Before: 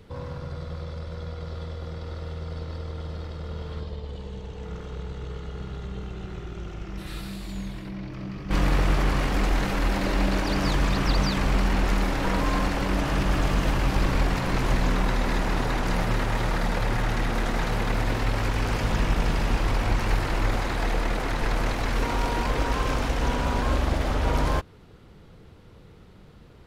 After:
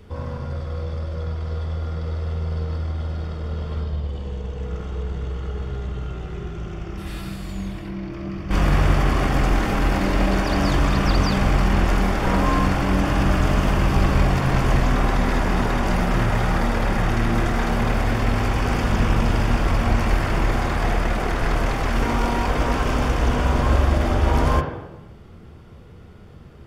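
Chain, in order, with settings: notch 4000 Hz, Q 8.8; on a send: low shelf 130 Hz -9 dB + reverb RT60 1.0 s, pre-delay 3 ms, DRR 2 dB; on the sum: gain +2 dB

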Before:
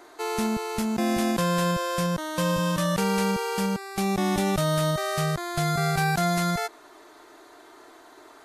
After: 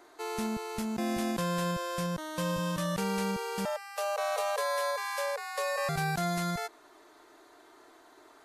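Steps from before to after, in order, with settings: 3.65–5.89 frequency shift +410 Hz; gain -7 dB

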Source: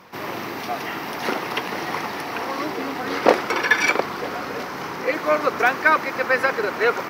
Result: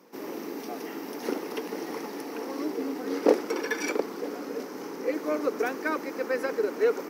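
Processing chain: HPF 210 Hz 24 dB/oct; band shelf 1700 Hz -10 dB 3 oct; small resonant body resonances 290/440/840 Hz, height 6 dB; gain -5 dB

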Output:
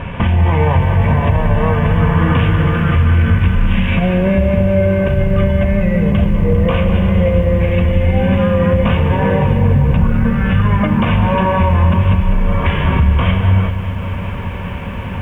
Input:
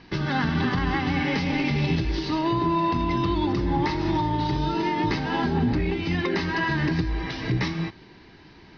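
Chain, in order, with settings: HPF 45 Hz 6 dB/oct; low shelf 67 Hz +8.5 dB; compressor 2.5:1, threshold -41 dBFS, peak gain reduction 15 dB; bell 140 Hz +6 dB 0.41 oct; speed mistake 78 rpm record played at 45 rpm; notch 1300 Hz, Q 6.2; maximiser +27.5 dB; lo-fi delay 0.199 s, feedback 80%, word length 7-bit, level -12 dB; gain -4 dB

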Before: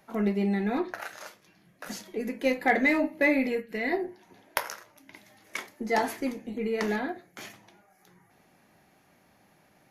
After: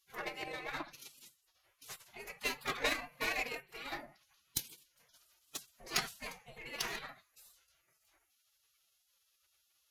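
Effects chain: spectral gate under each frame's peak -20 dB weak; added harmonics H 7 -20 dB, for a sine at -20.5 dBFS; formant-preserving pitch shift +4.5 st; gain +9 dB

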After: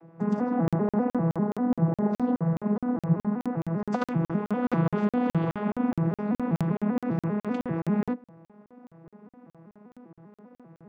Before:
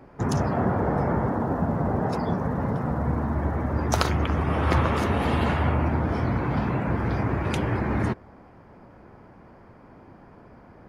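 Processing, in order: arpeggiated vocoder major triad, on E3, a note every 0.197 s; high shelf 3700 Hz -9 dB; crackling interface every 0.21 s, samples 2048, zero, from 0.68; gain +1 dB

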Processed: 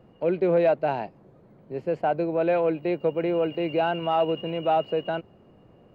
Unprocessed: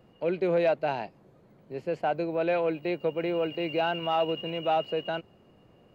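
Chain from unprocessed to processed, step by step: high shelf 2300 Hz -11 dB; gain +4.5 dB

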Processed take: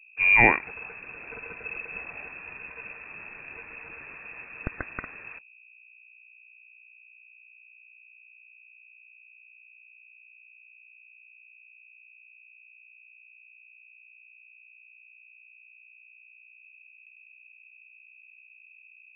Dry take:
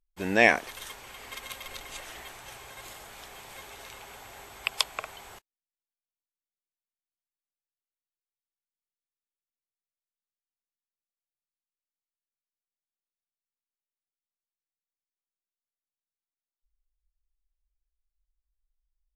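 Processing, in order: hum 60 Hz, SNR 30 dB; resonant low shelf 290 Hz +12 dB, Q 1.5; inverted band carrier 2600 Hz

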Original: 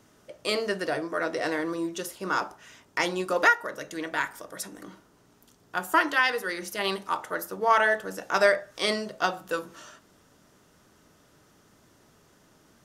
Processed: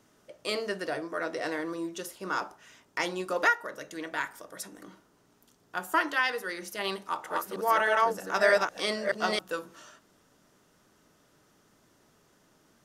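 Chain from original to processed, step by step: 6.94–9.39 reverse delay 0.311 s, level 0 dB; bell 72 Hz -5 dB 1.5 oct; gain -4 dB

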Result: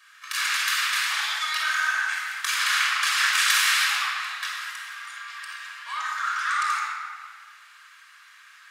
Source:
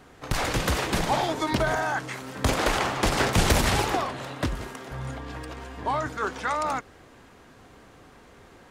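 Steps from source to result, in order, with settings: steep high-pass 1300 Hz 36 dB/oct; shoebox room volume 3400 m³, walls mixed, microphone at 5.7 m

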